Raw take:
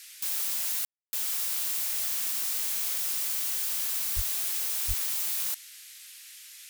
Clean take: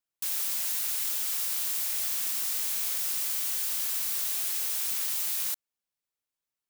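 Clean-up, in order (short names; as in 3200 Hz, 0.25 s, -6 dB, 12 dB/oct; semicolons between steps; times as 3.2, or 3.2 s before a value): de-plosive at 4.15/4.87; room tone fill 0.85–1.13; noise print and reduce 30 dB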